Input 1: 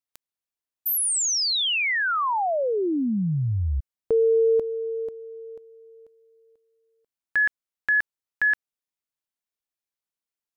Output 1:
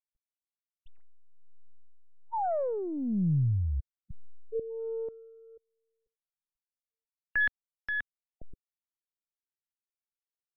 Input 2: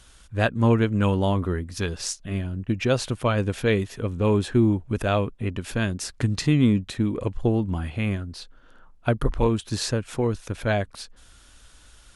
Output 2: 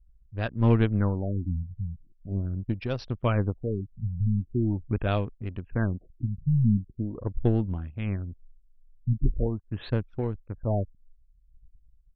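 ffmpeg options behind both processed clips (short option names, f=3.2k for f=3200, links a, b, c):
-af "aeval=exprs='0.473*(cos(1*acos(clip(val(0)/0.473,-1,1)))-cos(1*PI/2))+0.0266*(cos(3*acos(clip(val(0)/0.473,-1,1)))-cos(3*PI/2))+0.00841*(cos(7*acos(clip(val(0)/0.473,-1,1)))-cos(7*PI/2))+0.00841*(cos(8*acos(clip(val(0)/0.473,-1,1)))-cos(8*PI/2))':c=same,lowshelf=f=170:g=7.5,anlmdn=6.31,tremolo=f=1.2:d=0.52,afftfilt=real='re*lt(b*sr/1024,200*pow(6000/200,0.5+0.5*sin(2*PI*0.42*pts/sr)))':imag='im*lt(b*sr/1024,200*pow(6000/200,0.5+0.5*sin(2*PI*0.42*pts/sr)))':win_size=1024:overlap=0.75,volume=-3dB"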